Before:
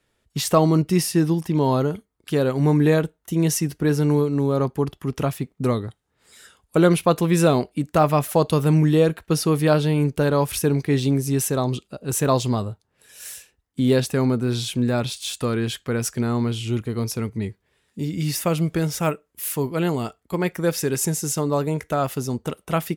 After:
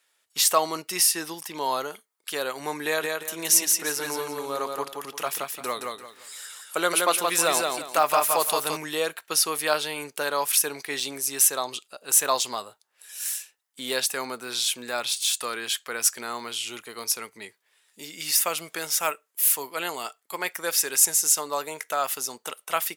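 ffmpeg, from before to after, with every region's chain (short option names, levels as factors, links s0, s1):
-filter_complex "[0:a]asettb=1/sr,asplit=3[s0][s1][s2];[s0]atrim=end=2.844[s3];[s1]atrim=start=2.84:end=8.77,asetpts=PTS-STARTPTS,afade=t=in:d=0.004:c=qsin,afade=t=out:st=5.926:d=0.004:c=qsin,acompressor=mode=upward:threshold=0.0112:ratio=2.5:attack=3.2:release=140:knee=2.83:detection=peak,aecho=1:1:172|344|516|688:0.668|0.187|0.0524|0.0147,atrim=end_sample=261513[s4];[s2]atrim=start=8.766[s5];[s3][s4]acrossfade=d=0.004:c1=hsin:c2=qsin[s6];[s6][s5]acrossfade=d=0.004:c1=qsin:c2=hsin,highpass=870,highshelf=f=4900:g=8,volume=1.12"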